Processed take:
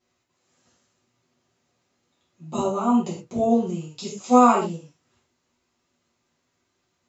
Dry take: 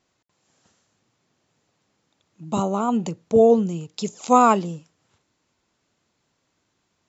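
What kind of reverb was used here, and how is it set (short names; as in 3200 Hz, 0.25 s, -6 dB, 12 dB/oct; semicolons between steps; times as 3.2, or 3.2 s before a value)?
non-linear reverb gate 0.15 s falling, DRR -8 dB; gain -10 dB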